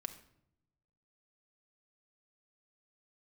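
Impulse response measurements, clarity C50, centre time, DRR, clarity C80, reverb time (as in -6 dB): 12.0 dB, 8 ms, 7.0 dB, 15.0 dB, 0.75 s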